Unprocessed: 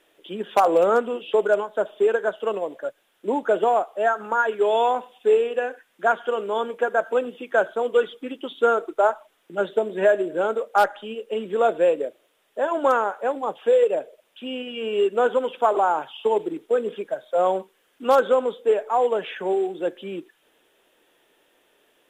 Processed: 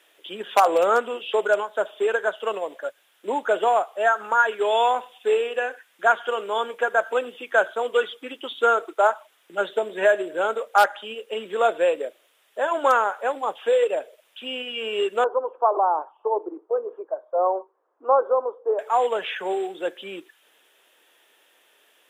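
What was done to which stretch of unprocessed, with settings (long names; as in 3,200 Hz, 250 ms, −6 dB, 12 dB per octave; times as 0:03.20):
0:15.24–0:18.79: Chebyshev band-pass filter 320–1,100 Hz, order 3
whole clip: high-pass filter 1,100 Hz 6 dB per octave; level +5.5 dB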